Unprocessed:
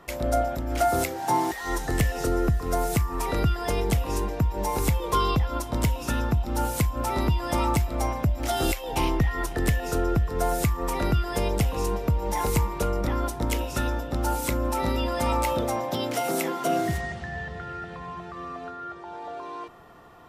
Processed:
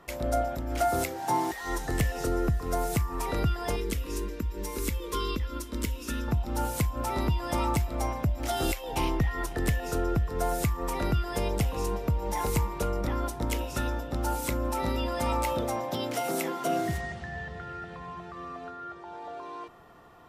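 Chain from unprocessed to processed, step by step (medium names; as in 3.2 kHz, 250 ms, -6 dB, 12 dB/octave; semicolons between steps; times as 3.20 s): 3.76–6.28 s: static phaser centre 310 Hz, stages 4; trim -3.5 dB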